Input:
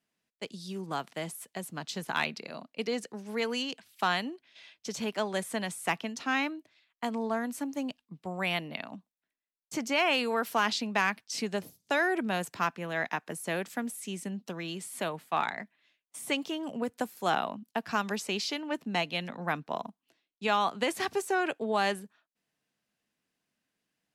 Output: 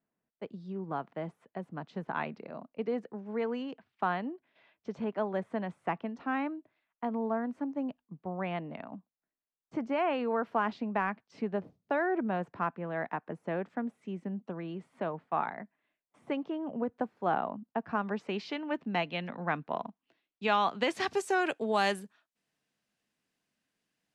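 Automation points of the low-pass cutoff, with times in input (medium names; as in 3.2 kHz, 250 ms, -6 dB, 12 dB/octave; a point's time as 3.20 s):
17.98 s 1.2 kHz
18.55 s 2.4 kHz
19.74 s 2.4 kHz
20.83 s 4.5 kHz
21.46 s 11 kHz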